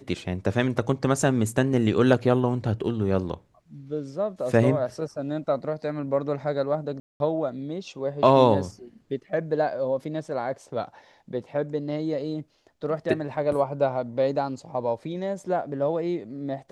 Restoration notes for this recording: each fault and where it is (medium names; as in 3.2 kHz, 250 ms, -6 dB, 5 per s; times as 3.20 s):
7.00–7.20 s: dropout 201 ms